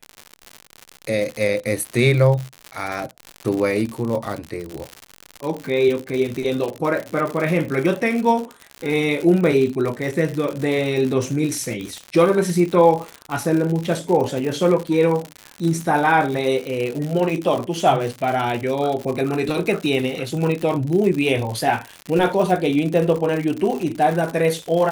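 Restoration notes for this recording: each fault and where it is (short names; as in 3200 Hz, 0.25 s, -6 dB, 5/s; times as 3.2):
crackle 110/s -24 dBFS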